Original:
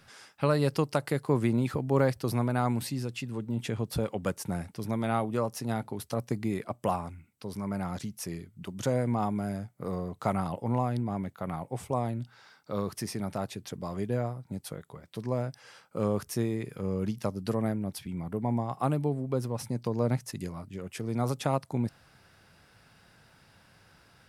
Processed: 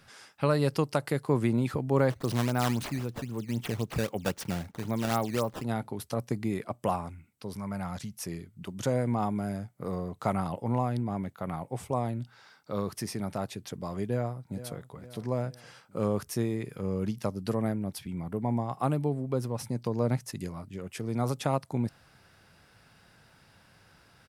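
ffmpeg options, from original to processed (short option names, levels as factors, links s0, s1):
-filter_complex "[0:a]asettb=1/sr,asplit=3[s0][s1][s2];[s0]atrim=end=2.104[s3];[s1]atrim=start=2.1:end=5.64,asetpts=PTS-STARTPTS,afade=t=in:d=0.004:c=qsin,afade=t=out:st=3.536:d=0.004:c=qsin,acrusher=samples=12:mix=1:aa=0.000001:lfo=1:lforange=19.2:lforate=3.8[s4];[s2]atrim=start=5.636[s5];[s3][s4]acrossfade=d=0.004:c1=hsin:c2=qsin[s6];[s6][s5]acrossfade=d=0.004:c1=qsin:c2=hsin,asettb=1/sr,asplit=3[s7][s8][s9];[s7]atrim=end=7.564[s10];[s8]atrim=start=7.56:end=8.22,asetpts=PTS-STARTPTS,afade=t=in:d=0.004:c=qsin,afade=t=out:st=0.656:d=0.004:c=qsin,equalizer=f=340:w=1.5:g=-8.5[s11];[s9]atrim=start=8.216[s12];[s10][s11]acrossfade=d=0.004:c1=hsin:c2=qsin[s13];[s13][s12]acrossfade=d=0.004:c1=qsin:c2=hsin,asplit=2[s14][s15];[s15]afade=t=in:st=14.08:d=0.01,afade=t=out:st=14.87:d=0.01,aecho=0:1:460|920|1380|1840|2300:0.211349|0.105674|0.0528372|0.0264186|0.0132093[s16];[s14][s16]amix=inputs=2:normalize=0"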